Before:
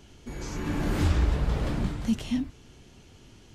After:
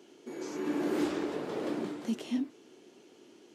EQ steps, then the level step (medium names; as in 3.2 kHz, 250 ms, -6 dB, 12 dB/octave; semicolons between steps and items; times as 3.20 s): ladder high-pass 290 Hz, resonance 45%; bass shelf 430 Hz +6.5 dB; +3.0 dB